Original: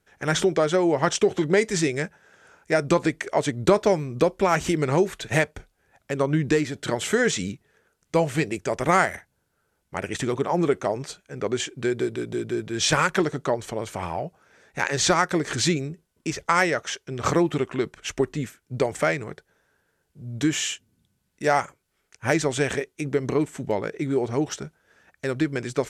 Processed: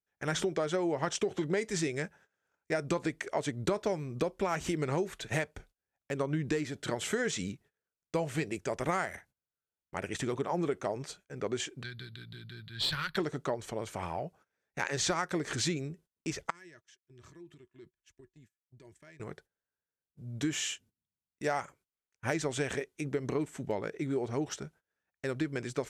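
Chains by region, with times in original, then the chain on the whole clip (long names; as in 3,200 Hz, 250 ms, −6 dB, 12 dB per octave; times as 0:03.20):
0:11.83–0:13.17: drawn EQ curve 140 Hz 0 dB, 390 Hz −23 dB, 700 Hz −18 dB, 1,600 Hz −1 dB, 2,500 Hz −5 dB, 4,300 Hz +12 dB, 6,500 Hz −28 dB, 13,000 Hz +6 dB + tube saturation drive 13 dB, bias 0.45
0:16.50–0:19.20: guitar amp tone stack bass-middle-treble 6-0-2 + downward compressor 16 to 1, threshold −45 dBFS + hollow resonant body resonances 360/630/960/1,700 Hz, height 13 dB, ringing for 75 ms
whole clip: noise gate −49 dBFS, range −22 dB; downward compressor 3 to 1, threshold −21 dBFS; level −7 dB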